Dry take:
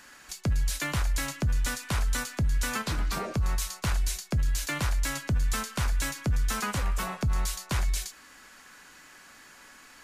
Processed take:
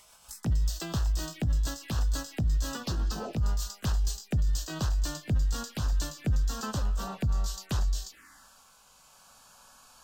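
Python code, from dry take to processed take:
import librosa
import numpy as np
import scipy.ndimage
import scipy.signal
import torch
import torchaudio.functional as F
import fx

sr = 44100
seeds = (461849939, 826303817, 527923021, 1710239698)

y = fx.pitch_glide(x, sr, semitones=2.5, runs='ending unshifted')
y = fx.env_phaser(y, sr, low_hz=270.0, high_hz=2200.0, full_db=-29.0)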